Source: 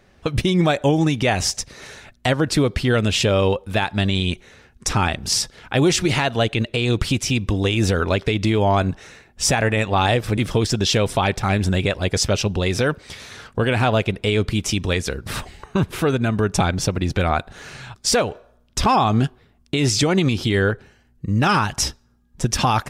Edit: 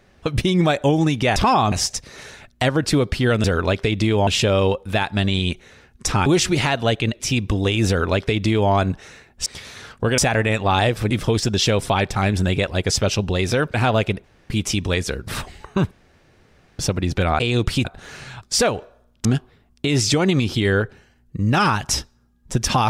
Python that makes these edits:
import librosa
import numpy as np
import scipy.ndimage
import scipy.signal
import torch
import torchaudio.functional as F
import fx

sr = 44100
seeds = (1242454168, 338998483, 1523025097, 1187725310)

y = fx.edit(x, sr, fx.cut(start_s=5.07, length_s=0.72),
    fx.move(start_s=6.73, length_s=0.46, to_s=17.38),
    fx.duplicate(start_s=7.87, length_s=0.83, to_s=3.08),
    fx.move(start_s=13.01, length_s=0.72, to_s=9.45),
    fx.room_tone_fill(start_s=14.23, length_s=0.26),
    fx.room_tone_fill(start_s=15.9, length_s=0.88),
    fx.move(start_s=18.78, length_s=0.36, to_s=1.36), tone=tone)